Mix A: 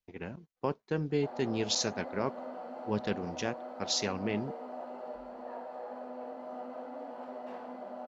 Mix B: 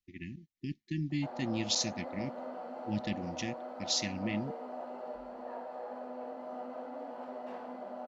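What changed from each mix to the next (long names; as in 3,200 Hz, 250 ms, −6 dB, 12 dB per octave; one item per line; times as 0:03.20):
speech: add linear-phase brick-wall band-stop 370–1,700 Hz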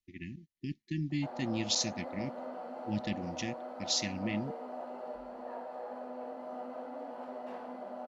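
master: add parametric band 9,900 Hz +7.5 dB 0.29 octaves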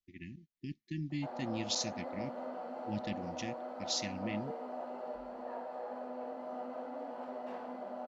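speech −4.0 dB
master: add parametric band 9,900 Hz −7.5 dB 0.29 octaves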